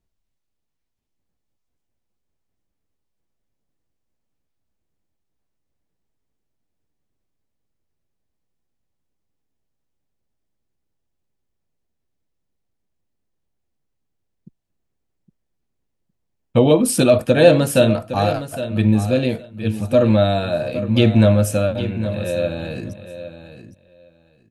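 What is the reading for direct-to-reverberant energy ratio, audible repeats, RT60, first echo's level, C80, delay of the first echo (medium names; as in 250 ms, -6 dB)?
no reverb, 2, no reverb, -12.0 dB, no reverb, 812 ms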